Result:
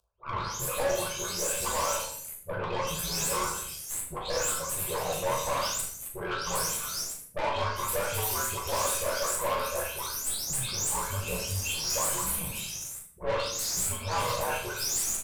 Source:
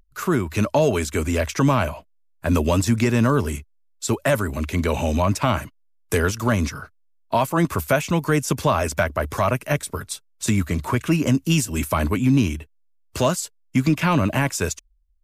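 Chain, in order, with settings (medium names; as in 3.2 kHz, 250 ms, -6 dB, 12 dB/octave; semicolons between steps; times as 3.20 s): delay that grows with frequency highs late, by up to 437 ms; static phaser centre 860 Hz, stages 4; frequency shift -70 Hz; high-pass 430 Hz 6 dB/octave; treble shelf 2.9 kHz +9.5 dB; comb 1.9 ms, depth 36%; flutter echo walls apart 6.7 m, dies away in 0.32 s; valve stage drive 27 dB, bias 0.55; simulated room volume 83 m³, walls mixed, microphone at 0.77 m; trim -1.5 dB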